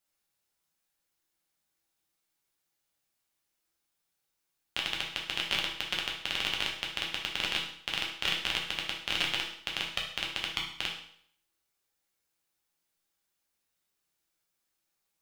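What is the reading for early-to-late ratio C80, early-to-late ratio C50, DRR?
9.0 dB, 5.0 dB, -2.0 dB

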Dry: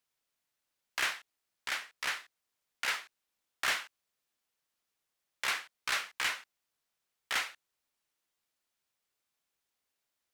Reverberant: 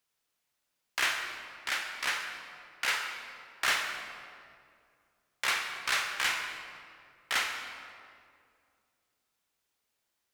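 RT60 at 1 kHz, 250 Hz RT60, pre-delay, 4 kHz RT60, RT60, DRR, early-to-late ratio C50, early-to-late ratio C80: 2.1 s, 2.7 s, 28 ms, 1.4 s, 2.2 s, 3.5 dB, 4.5 dB, 5.5 dB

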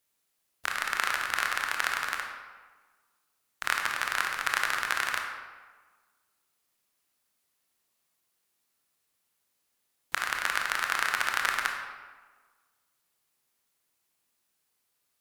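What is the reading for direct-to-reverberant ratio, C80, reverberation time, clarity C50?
1.5 dB, 5.5 dB, 1.4 s, 3.5 dB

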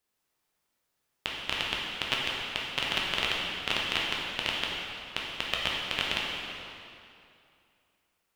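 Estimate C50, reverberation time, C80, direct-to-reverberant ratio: -1.0 dB, 2.6 s, 1.0 dB, -4.0 dB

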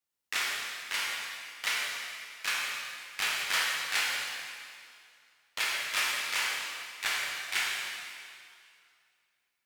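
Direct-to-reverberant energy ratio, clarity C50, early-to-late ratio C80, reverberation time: -4.5 dB, -1.5 dB, 0.5 dB, 2.3 s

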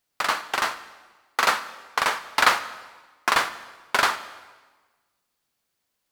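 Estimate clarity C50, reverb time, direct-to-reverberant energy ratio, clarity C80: 13.5 dB, 1.3 s, 11.5 dB, 15.5 dB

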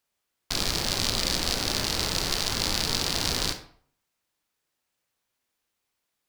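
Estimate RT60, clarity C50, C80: 0.55 s, 10.0 dB, 14.5 dB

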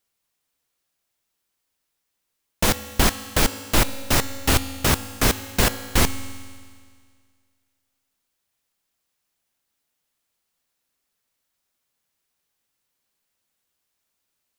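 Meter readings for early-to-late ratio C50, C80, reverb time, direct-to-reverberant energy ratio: 13.0 dB, 14.0 dB, 1.9 s, 11.5 dB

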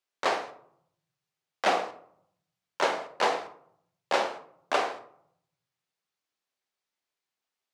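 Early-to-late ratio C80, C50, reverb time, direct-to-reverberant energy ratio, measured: 16.0 dB, 11.0 dB, 0.65 s, 6.0 dB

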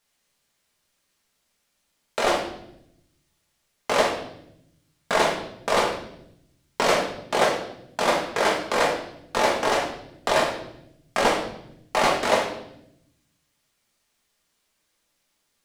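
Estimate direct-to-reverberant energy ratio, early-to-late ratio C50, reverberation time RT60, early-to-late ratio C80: -1.5 dB, 5.5 dB, 0.80 s, 9.0 dB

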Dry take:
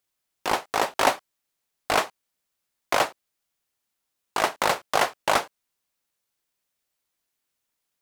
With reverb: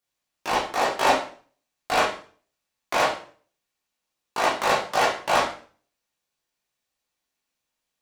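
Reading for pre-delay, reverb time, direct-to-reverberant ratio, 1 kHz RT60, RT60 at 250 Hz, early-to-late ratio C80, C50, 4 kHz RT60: 11 ms, 0.45 s, -7.0 dB, 0.40 s, 0.50 s, 11.0 dB, 6.0 dB, 0.40 s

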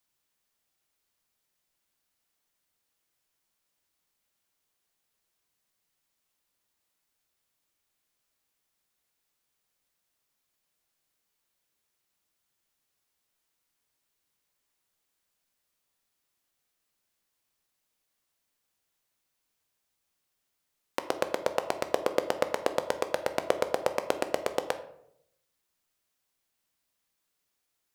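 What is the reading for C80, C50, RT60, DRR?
15.0 dB, 12.0 dB, 0.75 s, 8.5 dB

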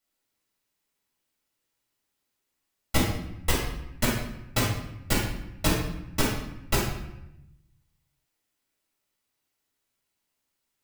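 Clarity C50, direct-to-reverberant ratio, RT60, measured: 2.0 dB, -6.0 dB, 0.85 s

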